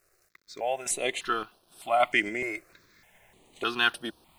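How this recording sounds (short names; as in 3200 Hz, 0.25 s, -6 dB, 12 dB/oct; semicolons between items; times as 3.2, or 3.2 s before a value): random-step tremolo, depth 75%; a quantiser's noise floor 12-bit, dither none; notches that jump at a steady rate 3.3 Hz 900–7100 Hz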